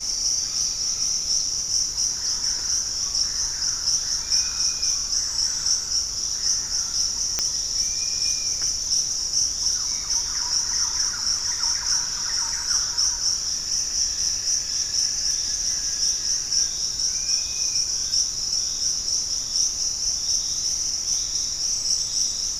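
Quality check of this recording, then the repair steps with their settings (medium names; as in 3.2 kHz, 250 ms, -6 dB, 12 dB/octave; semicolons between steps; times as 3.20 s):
7.39 s: pop -7 dBFS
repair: de-click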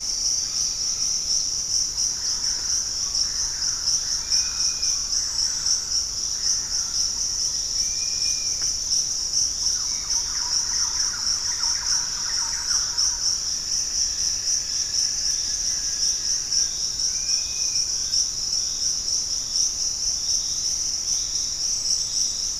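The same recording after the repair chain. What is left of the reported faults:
nothing left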